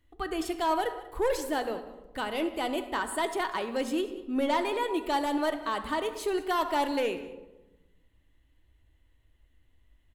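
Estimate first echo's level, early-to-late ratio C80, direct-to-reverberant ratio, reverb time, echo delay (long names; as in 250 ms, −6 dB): −18.0 dB, 11.0 dB, 6.5 dB, 1.1 s, 189 ms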